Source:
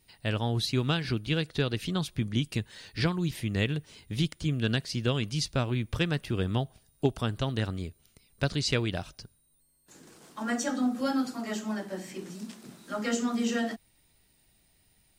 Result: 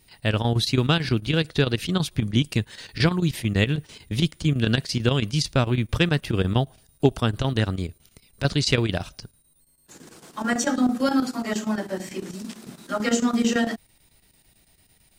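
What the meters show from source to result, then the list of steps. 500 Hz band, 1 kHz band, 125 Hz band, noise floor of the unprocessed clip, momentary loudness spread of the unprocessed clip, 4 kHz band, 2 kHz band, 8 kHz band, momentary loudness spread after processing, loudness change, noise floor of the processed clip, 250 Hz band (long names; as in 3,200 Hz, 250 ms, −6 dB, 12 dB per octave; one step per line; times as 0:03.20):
+6.5 dB, +6.5 dB, +6.5 dB, −67 dBFS, 11 LU, +6.5 dB, +6.5 dB, +6.5 dB, 10 LU, +6.5 dB, −62 dBFS, +6.5 dB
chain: square-wave tremolo 9 Hz, depth 65%, duty 80%
level +7.5 dB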